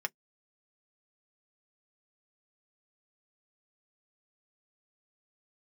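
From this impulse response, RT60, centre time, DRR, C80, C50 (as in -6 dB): 0.10 s, 2 ms, 4.0 dB, 60.0 dB, 44.5 dB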